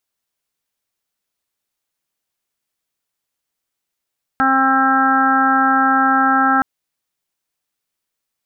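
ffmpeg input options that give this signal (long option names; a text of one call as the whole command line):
ffmpeg -f lavfi -i "aevalsrc='0.119*sin(2*PI*266*t)+0.0224*sin(2*PI*532*t)+0.141*sin(2*PI*798*t)+0.0447*sin(2*PI*1064*t)+0.178*sin(2*PI*1330*t)+0.106*sin(2*PI*1596*t)+0.0188*sin(2*PI*1862*t)':duration=2.22:sample_rate=44100" out.wav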